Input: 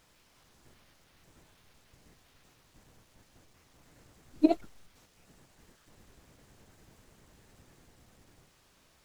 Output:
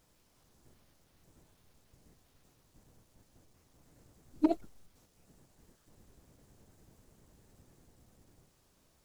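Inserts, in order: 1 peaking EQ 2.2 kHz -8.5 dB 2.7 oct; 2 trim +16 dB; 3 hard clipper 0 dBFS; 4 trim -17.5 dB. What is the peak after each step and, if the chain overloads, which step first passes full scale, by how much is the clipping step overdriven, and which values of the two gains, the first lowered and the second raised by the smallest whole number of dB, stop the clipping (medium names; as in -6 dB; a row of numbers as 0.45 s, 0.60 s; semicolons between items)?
-10.5 dBFS, +5.5 dBFS, 0.0 dBFS, -17.5 dBFS; step 2, 5.5 dB; step 2 +10 dB, step 4 -11.5 dB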